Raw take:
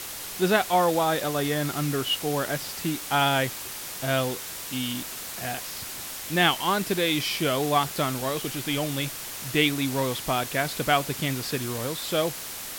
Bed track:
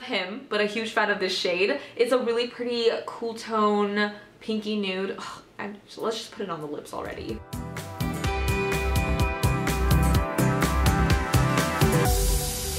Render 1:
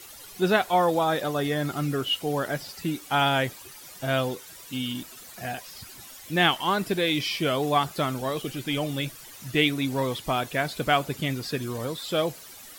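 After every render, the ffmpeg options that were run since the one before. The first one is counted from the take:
ffmpeg -i in.wav -af "afftdn=noise_reduction=13:noise_floor=-37" out.wav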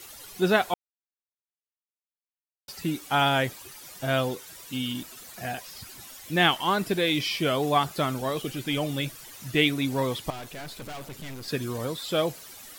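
ffmpeg -i in.wav -filter_complex "[0:a]asettb=1/sr,asplit=3[link_01][link_02][link_03];[link_01]atrim=end=10.304[link_04];[link_02]atrim=start=10.3:end=11.48,asetpts=PTS-STARTPTS,afade=type=in:duration=0.004:curve=qsin,afade=type=out:start_time=1.176:duration=0.004:curve=qsin,aeval=exprs='(tanh(70.8*val(0)+0.55)-tanh(0.55))/70.8':channel_layout=same[link_05];[link_03]atrim=start=11.476[link_06];[link_04][link_05]acrossfade=duration=0.004:curve1=hsin:curve2=qsin[link_07];[link_07][link_06]acrossfade=duration=0.004:curve1=qsin:curve2=hsin,asplit=3[link_08][link_09][link_10];[link_08]atrim=end=0.74,asetpts=PTS-STARTPTS,afade=type=out:start_time=0.736:duration=0.004:curve=hsin[link_11];[link_09]atrim=start=0.74:end=2.68,asetpts=PTS-STARTPTS,volume=0[link_12];[link_10]atrim=start=2.68,asetpts=PTS-STARTPTS,afade=type=in:duration=0.004:curve=hsin[link_13];[link_11][link_12][link_13]concat=n=3:v=0:a=1" out.wav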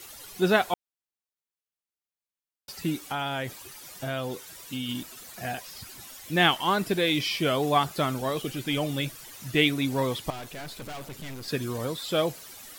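ffmpeg -i in.wav -filter_complex "[0:a]asettb=1/sr,asplit=3[link_01][link_02][link_03];[link_01]atrim=end=2.974[link_04];[link_02]atrim=start=2.97:end=4.89,asetpts=PTS-STARTPTS,afade=type=in:duration=0.004:curve=qsin,afade=type=out:start_time=1.916:duration=0.004:curve=qsin,acompressor=threshold=-29dB:ratio=3:attack=3.2:release=140:knee=1:detection=peak[link_05];[link_03]atrim=start=4.886[link_06];[link_04][link_05]acrossfade=duration=0.004:curve1=hsin:curve2=qsin[link_07];[link_07][link_06]acrossfade=duration=0.004:curve1=qsin:curve2=hsin" out.wav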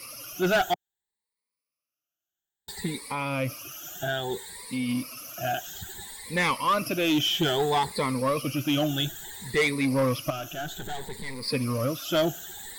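ffmpeg -i in.wav -af "afftfilt=real='re*pow(10,18/40*sin(2*PI*(0.93*log(max(b,1)*sr/1024/100)/log(2)-(0.6)*(pts-256)/sr)))':imag='im*pow(10,18/40*sin(2*PI*(0.93*log(max(b,1)*sr/1024/100)/log(2)-(0.6)*(pts-256)/sr)))':win_size=1024:overlap=0.75,asoftclip=type=tanh:threshold=-18dB" out.wav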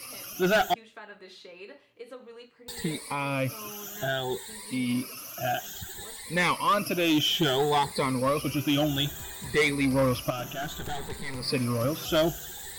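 ffmpeg -i in.wav -i bed.wav -filter_complex "[1:a]volume=-22dB[link_01];[0:a][link_01]amix=inputs=2:normalize=0" out.wav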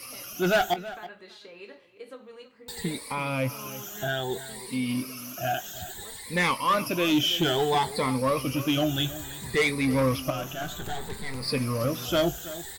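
ffmpeg -i in.wav -filter_complex "[0:a]asplit=2[link_01][link_02];[link_02]adelay=23,volume=-13dB[link_03];[link_01][link_03]amix=inputs=2:normalize=0,asplit=2[link_04][link_05];[link_05]adelay=326.5,volume=-15dB,highshelf=frequency=4000:gain=-7.35[link_06];[link_04][link_06]amix=inputs=2:normalize=0" out.wav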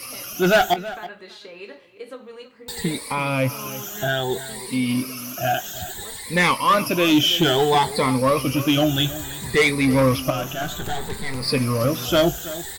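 ffmpeg -i in.wav -af "volume=6.5dB" out.wav

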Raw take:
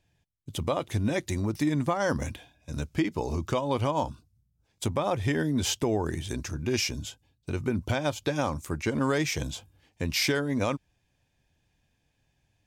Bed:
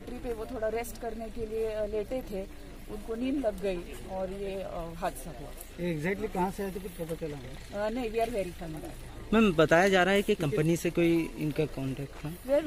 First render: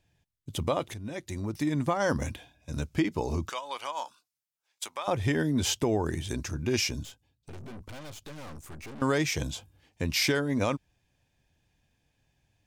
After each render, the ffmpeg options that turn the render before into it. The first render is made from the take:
ffmpeg -i in.wav -filter_complex "[0:a]asettb=1/sr,asplit=3[link_01][link_02][link_03];[link_01]atrim=end=3.494[link_04];[link_02]atrim=start=3.49:end=5.08,asetpts=PTS-STARTPTS,afade=type=in:duration=0.004:curve=qsin,afade=type=out:start_time=1.586:duration=0.004:curve=qsin,highpass=1100[link_05];[link_03]atrim=start=5.076[link_06];[link_04][link_05]acrossfade=duration=0.004:curve1=hsin:curve2=qsin[link_07];[link_07][link_06]acrossfade=duration=0.004:curve1=qsin:curve2=hsin,asettb=1/sr,asplit=3[link_08][link_09][link_10];[link_08]atrim=end=7.034[link_11];[link_09]atrim=start=7.03:end=9.02,asetpts=PTS-STARTPTS,afade=type=in:duration=0.004:curve=qsin,afade=type=out:start_time=1.986:duration=0.004:curve=qsin,aeval=exprs='(tanh(126*val(0)+0.7)-tanh(0.7))/126':channel_layout=same[link_12];[link_10]atrim=start=9.016[link_13];[link_11][link_12]acrossfade=duration=0.004:curve1=hsin:curve2=qsin[link_14];[link_14][link_13]acrossfade=duration=0.004:curve1=qsin:curve2=hsin,asplit=2[link_15][link_16];[link_15]atrim=end=0.94,asetpts=PTS-STARTPTS,afade=type=out:start_time=0.936:duration=0.004:curve=hsin:silence=0.188365[link_17];[link_16]atrim=start=0.94,asetpts=PTS-STARTPTS,afade=type=in:duration=1.04:silence=0.188365[link_18];[link_17][link_18]concat=n=2:v=0:a=1" out.wav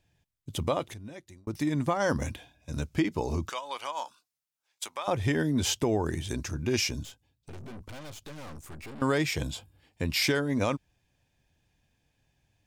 ffmpeg -i in.wav -filter_complex "[0:a]asettb=1/sr,asplit=3[link_01][link_02][link_03];[link_01]atrim=end=8.744[link_04];[link_02]atrim=start=8.74:end=10.23,asetpts=PTS-STARTPTS,afade=type=in:duration=0.004:curve=qsin,afade=type=out:start_time=1.486:duration=0.004:curve=qsin,bandreject=frequency=6100:width=6.3[link_05];[link_03]atrim=start=10.226[link_06];[link_04][link_05]acrossfade=duration=0.004:curve1=hsin:curve2=qsin[link_07];[link_07][link_06]acrossfade=duration=0.004:curve1=qsin:curve2=hsin,asplit=2[link_08][link_09];[link_08]atrim=end=1.47,asetpts=PTS-STARTPTS,afade=type=out:start_time=0.73:duration=0.74[link_10];[link_09]atrim=start=1.47,asetpts=PTS-STARTPTS,afade=type=in:duration=0.004:curve=hsin[link_11];[link_10][link_11]concat=n=2:v=0:a=1" out.wav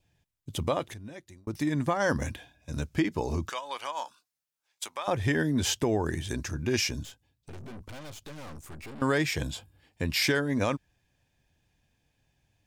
ffmpeg -i in.wav -af "adynamicequalizer=threshold=0.00224:dfrequency=1700:dqfactor=6:tfrequency=1700:tqfactor=6:attack=5:release=100:ratio=0.375:range=3:mode=boostabove:tftype=bell" out.wav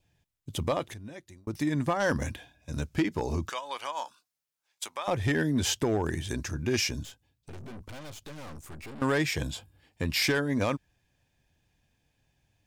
ffmpeg -i in.wav -af "asoftclip=type=hard:threshold=-19.5dB" out.wav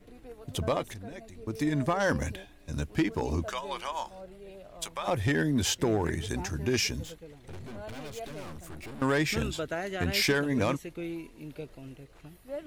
ffmpeg -i in.wav -i bed.wav -filter_complex "[1:a]volume=-11.5dB[link_01];[0:a][link_01]amix=inputs=2:normalize=0" out.wav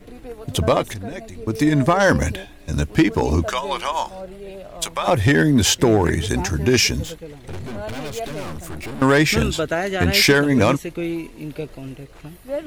ffmpeg -i in.wav -af "volume=11.5dB" out.wav

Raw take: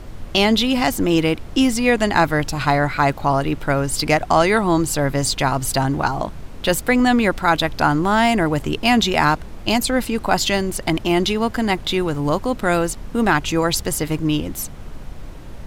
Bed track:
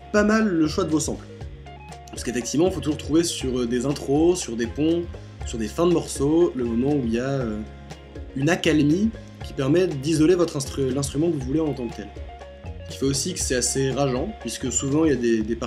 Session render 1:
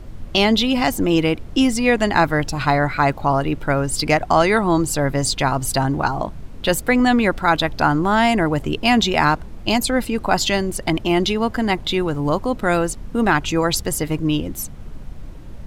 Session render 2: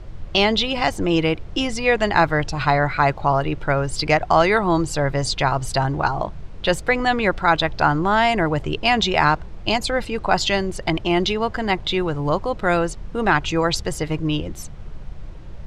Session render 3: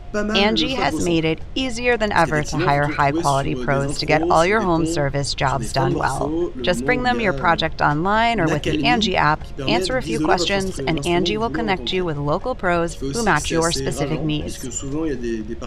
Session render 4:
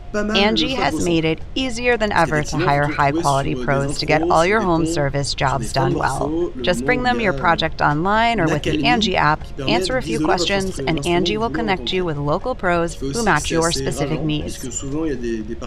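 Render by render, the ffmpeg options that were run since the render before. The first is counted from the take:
ffmpeg -i in.wav -af "afftdn=noise_reduction=6:noise_floor=-35" out.wav
ffmpeg -i in.wav -af "lowpass=5800,equalizer=frequency=250:width_type=o:width=0.4:gain=-11" out.wav
ffmpeg -i in.wav -i bed.wav -filter_complex "[1:a]volume=-4dB[link_01];[0:a][link_01]amix=inputs=2:normalize=0" out.wav
ffmpeg -i in.wav -af "volume=1dB,alimiter=limit=-3dB:level=0:latency=1" out.wav

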